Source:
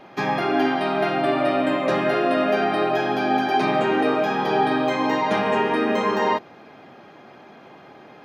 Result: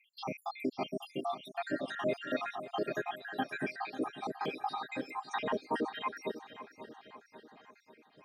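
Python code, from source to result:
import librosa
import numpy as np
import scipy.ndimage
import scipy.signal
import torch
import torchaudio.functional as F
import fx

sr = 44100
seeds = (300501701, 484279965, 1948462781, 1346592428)

p1 = fx.spec_dropout(x, sr, seeds[0], share_pct=82)
p2 = fx.high_shelf(p1, sr, hz=4900.0, db=8.5)
p3 = p2 + fx.echo_feedback(p2, sr, ms=543, feedback_pct=54, wet_db=-13.5, dry=0)
y = F.gain(torch.from_numpy(p3), -9.0).numpy()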